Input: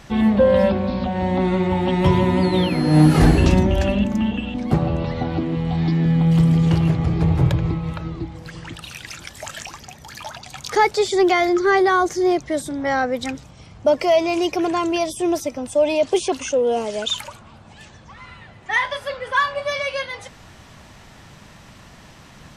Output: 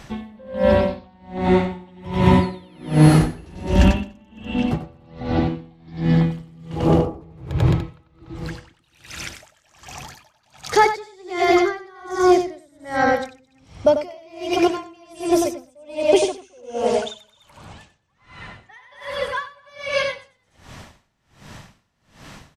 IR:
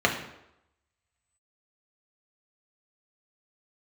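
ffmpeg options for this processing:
-filter_complex "[0:a]asplit=3[link_01][link_02][link_03];[link_01]afade=type=out:start_time=6.75:duration=0.02[link_04];[link_02]equalizer=frequency=125:width_type=o:width=1:gain=-10,equalizer=frequency=250:width_type=o:width=1:gain=6,equalizer=frequency=500:width_type=o:width=1:gain=11,equalizer=frequency=1000:width_type=o:width=1:gain=8,equalizer=frequency=2000:width_type=o:width=1:gain=-12,equalizer=frequency=4000:width_type=o:width=1:gain=-10,equalizer=frequency=8000:width_type=o:width=1:gain=-5,afade=type=in:start_time=6.75:duration=0.02,afade=type=out:start_time=7.21:duration=0.02[link_05];[link_03]afade=type=in:start_time=7.21:duration=0.02[link_06];[link_04][link_05][link_06]amix=inputs=3:normalize=0,asplit=2[link_07][link_08];[link_08]aecho=0:1:93.29|215.7|291.5:0.794|0.447|0.355[link_09];[link_07][link_09]amix=inputs=2:normalize=0,aeval=exprs='val(0)*pow(10,-33*(0.5-0.5*cos(2*PI*1.3*n/s))/20)':channel_layout=same,volume=2.5dB"

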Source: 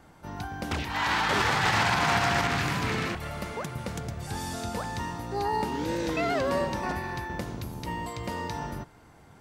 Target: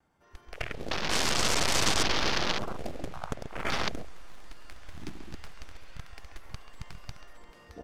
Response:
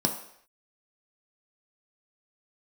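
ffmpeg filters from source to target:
-filter_complex "[0:a]asplit=2[link_01][link_02];[link_02]aecho=0:1:744|1488|2232|2976:0.473|0.147|0.0455|0.0141[link_03];[link_01][link_03]amix=inputs=2:normalize=0,afftfilt=real='re*lt(hypot(re,im),0.0398)':imag='im*lt(hypot(re,im),0.0398)':win_size=1024:overlap=0.75,crystalizer=i=6:c=0,asoftclip=type=tanh:threshold=-12dB,bandreject=frequency=4000:width=17,atempo=1.2,aeval=exprs='0.251*(cos(1*acos(clip(val(0)/0.251,-1,1)))-cos(1*PI/2))+0.0355*(cos(2*acos(clip(val(0)/0.251,-1,1)))-cos(2*PI/2))+0.0355*(cos(5*acos(clip(val(0)/0.251,-1,1)))-cos(5*PI/2))+0.00794*(cos(6*acos(clip(val(0)/0.251,-1,1)))-cos(6*PI/2))+0.0794*(cos(7*acos(clip(val(0)/0.251,-1,1)))-cos(7*PI/2))':channel_layout=same,asplit=2[link_04][link_05];[link_05]adelay=135,lowpass=frequency=2200:poles=1,volume=-7dB,asplit=2[link_06][link_07];[link_07]adelay=135,lowpass=frequency=2200:poles=1,volume=0.41,asplit=2[link_08][link_09];[link_09]adelay=135,lowpass=frequency=2200:poles=1,volume=0.41,asplit=2[link_10][link_11];[link_11]adelay=135,lowpass=frequency=2200:poles=1,volume=0.41,asplit=2[link_12][link_13];[link_13]adelay=135,lowpass=frequency=2200:poles=1,volume=0.41[link_14];[link_06][link_08][link_10][link_12][link_14]amix=inputs=5:normalize=0[link_15];[link_04][link_15]amix=inputs=2:normalize=0,dynaudnorm=framelen=110:gausssize=7:maxgain=8dB,aemphasis=mode=reproduction:type=50fm,afwtdn=0.0224,highshelf=frequency=2700:gain=-8.5,volume=4dB"

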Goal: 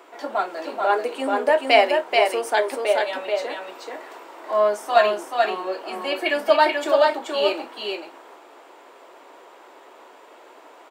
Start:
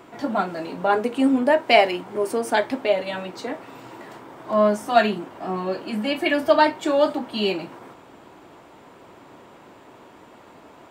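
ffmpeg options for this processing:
ffmpeg -i in.wav -filter_complex "[0:a]highpass=frequency=380:width=0.5412,highpass=frequency=380:width=1.3066,asplit=2[link_01][link_02];[link_02]aecho=0:1:432:0.668[link_03];[link_01][link_03]amix=inputs=2:normalize=0" out.wav

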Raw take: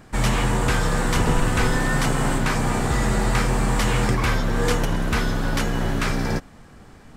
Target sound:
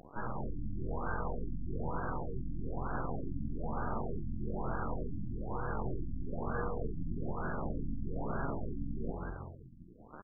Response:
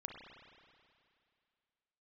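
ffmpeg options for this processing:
-filter_complex "[0:a]aemphasis=mode=production:type=riaa,acrossover=split=7700[link_01][link_02];[link_02]acompressor=threshold=-35dB:ratio=4:attack=1:release=60[link_03];[link_01][link_03]amix=inputs=2:normalize=0,lowshelf=frequency=220:gain=7,bandreject=frequency=50:width_type=h:width=6,bandreject=frequency=100:width_type=h:width=6,bandreject=frequency=150:width_type=h:width=6,bandreject=frequency=200:width_type=h:width=6,bandreject=frequency=250:width_type=h:width=6,bandreject=frequency=300:width_type=h:width=6,bandreject=frequency=350:width_type=h:width=6,bandreject=frequency=400:width_type=h:width=6,alimiter=limit=-18.5dB:level=0:latency=1:release=13,acompressor=threshold=-34dB:ratio=6,acrusher=bits=4:dc=4:mix=0:aa=0.000001,atempo=0.7,asoftclip=type=hard:threshold=-34dB,asplit=7[link_04][link_05][link_06][link_07][link_08][link_09][link_10];[link_05]adelay=182,afreqshift=-44,volume=-5dB[link_11];[link_06]adelay=364,afreqshift=-88,volume=-11.9dB[link_12];[link_07]adelay=546,afreqshift=-132,volume=-18.9dB[link_13];[link_08]adelay=728,afreqshift=-176,volume=-25.8dB[link_14];[link_09]adelay=910,afreqshift=-220,volume=-32.7dB[link_15];[link_10]adelay=1092,afreqshift=-264,volume=-39.7dB[link_16];[link_04][link_11][link_12][link_13][link_14][link_15][link_16]amix=inputs=7:normalize=0,afftfilt=real='re*lt(b*sr/1024,300*pow(1700/300,0.5+0.5*sin(2*PI*1.1*pts/sr)))':imag='im*lt(b*sr/1024,300*pow(1700/300,0.5+0.5*sin(2*PI*1.1*pts/sr)))':win_size=1024:overlap=0.75,volume=7.5dB"

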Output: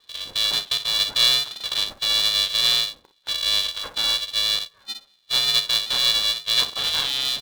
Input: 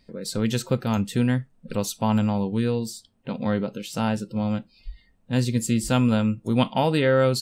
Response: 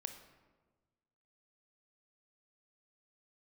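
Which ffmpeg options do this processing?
-filter_complex "[0:a]asettb=1/sr,asplit=3[link_01][link_02][link_03];[link_01]atrim=end=1.194[link_04];[link_02]atrim=start=1.19:end=1.74,asetpts=PTS-STARTPTS,afade=type=in:duration=0.004:curve=qsin,afade=type=out:start_time=0.546:duration=0.004:curve=qsin,aeval=exprs='val(0)+0.5*0.0501*sgn(val(0))':channel_layout=same[link_05];[link_03]atrim=start=1.736[link_06];[link_04][link_05]acrossfade=duration=0.004:curve1=hsin:curve2=qsin[link_07];[link_07][link_06]acrossfade=duration=0.004:curve1=qsin:curve2=hsin,highpass=42,equalizer=frequency=520:width=1.3:gain=-11,alimiter=limit=-15dB:level=0:latency=1:release=488,asoftclip=type=tanh:threshold=-17dB,aecho=1:1:33|49|59:0.237|0.15|0.282,lowpass=frequency=3300:width_type=q:width=0.5098,lowpass=frequency=3300:width_type=q:width=0.6013,lowpass=frequency=3300:width_type=q:width=0.9,lowpass=frequency=3300:width_type=q:width=2.563,afreqshift=-3900,asuperstop=centerf=2300:order=12:qfactor=1.3,aeval=exprs='val(0)*sgn(sin(2*PI*280*n/s))':channel_layout=same,volume=6dB"

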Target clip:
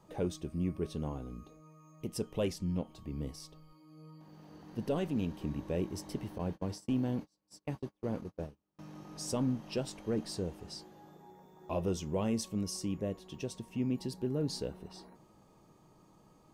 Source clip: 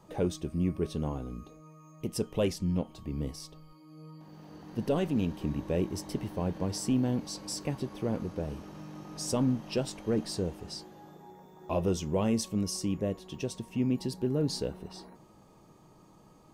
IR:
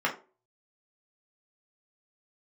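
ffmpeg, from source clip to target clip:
-filter_complex "[0:a]asettb=1/sr,asplit=3[link_01][link_02][link_03];[link_01]atrim=end=6.384[link_04];[link_02]atrim=start=6.38:end=8.79,asetpts=PTS-STARTPTS,afade=type=in:duration=0.004:curve=qsin,afade=type=out:start_time=2.406:duration=0.004:curve=qsin,agate=range=-36dB:threshold=-33dB:ratio=16:detection=peak[link_05];[link_03]atrim=start=8.786[link_06];[link_04][link_05]acrossfade=duration=0.004:curve1=hsin:curve2=qsin[link_07];[link_07][link_06]acrossfade=duration=0.004:curve1=qsin:curve2=hsin,volume=-4.5dB"

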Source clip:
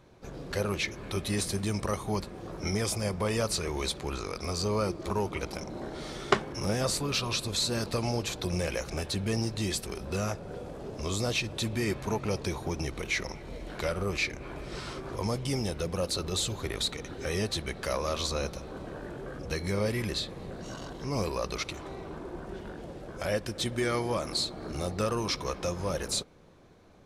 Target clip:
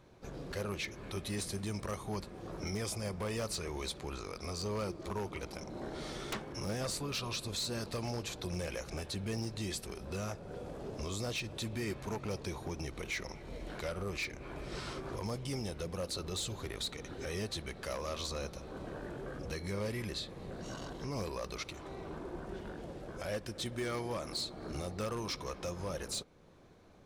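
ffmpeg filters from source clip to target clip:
ffmpeg -i in.wav -af "aeval=exprs='0.075*(abs(mod(val(0)/0.075+3,4)-2)-1)':channel_layout=same,alimiter=level_in=3dB:limit=-24dB:level=0:latency=1:release=388,volume=-3dB,volume=-3dB" out.wav

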